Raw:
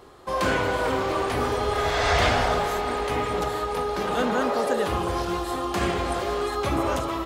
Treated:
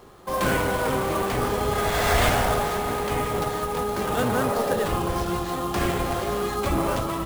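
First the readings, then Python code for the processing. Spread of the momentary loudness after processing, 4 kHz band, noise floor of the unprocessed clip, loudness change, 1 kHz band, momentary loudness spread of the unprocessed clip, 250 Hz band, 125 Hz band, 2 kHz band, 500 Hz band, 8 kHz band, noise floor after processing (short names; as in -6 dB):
6 LU, -1.0 dB, -30 dBFS, +0.5 dB, 0.0 dB, 6 LU, +1.5 dB, +3.0 dB, -0.5 dB, 0.0 dB, +4.5 dB, -29 dBFS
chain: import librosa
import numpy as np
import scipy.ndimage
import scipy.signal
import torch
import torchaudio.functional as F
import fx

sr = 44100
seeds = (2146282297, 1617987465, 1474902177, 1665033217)

y = fx.octave_divider(x, sr, octaves=1, level_db=-2.0)
y = fx.sample_hold(y, sr, seeds[0], rate_hz=11000.0, jitter_pct=20)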